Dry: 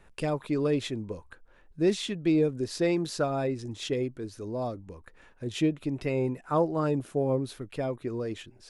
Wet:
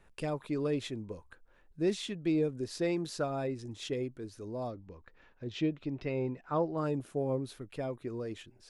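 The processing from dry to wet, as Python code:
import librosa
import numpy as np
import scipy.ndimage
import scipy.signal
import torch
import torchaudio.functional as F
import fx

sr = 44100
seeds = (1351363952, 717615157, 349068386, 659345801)

y = fx.lowpass(x, sr, hz=5400.0, slope=24, at=(4.7, 6.78))
y = F.gain(torch.from_numpy(y), -5.5).numpy()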